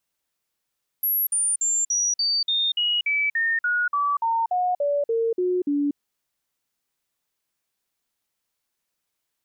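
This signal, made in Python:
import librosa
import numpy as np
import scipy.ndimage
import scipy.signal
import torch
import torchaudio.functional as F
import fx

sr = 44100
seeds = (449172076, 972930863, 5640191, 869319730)

y = fx.stepped_sweep(sr, from_hz=11600.0, direction='down', per_octave=3, tones=17, dwell_s=0.24, gap_s=0.05, level_db=-19.5)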